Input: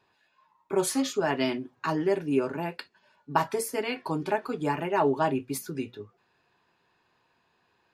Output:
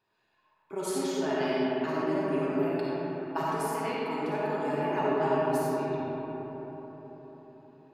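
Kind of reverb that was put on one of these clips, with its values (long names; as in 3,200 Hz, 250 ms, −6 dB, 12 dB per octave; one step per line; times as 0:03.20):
comb and all-pass reverb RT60 4.8 s, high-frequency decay 0.35×, pre-delay 15 ms, DRR −7.5 dB
level −10 dB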